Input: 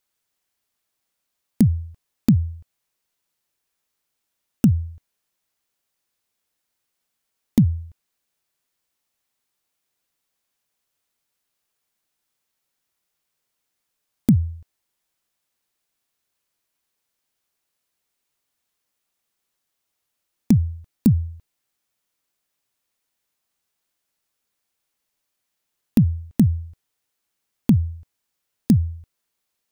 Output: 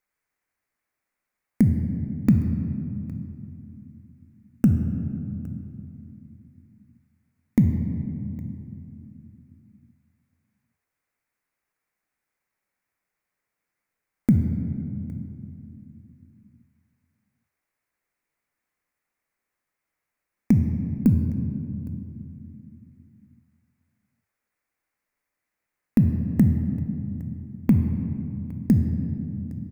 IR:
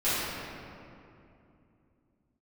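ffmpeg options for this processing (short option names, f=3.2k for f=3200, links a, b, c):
-filter_complex "[0:a]highshelf=f=2.6k:t=q:w=3:g=-6.5,aecho=1:1:812:0.0944,asplit=2[a][b];[1:a]atrim=start_sample=2205[c];[b][c]afir=irnorm=-1:irlink=0,volume=-17dB[d];[a][d]amix=inputs=2:normalize=0,volume=-3.5dB"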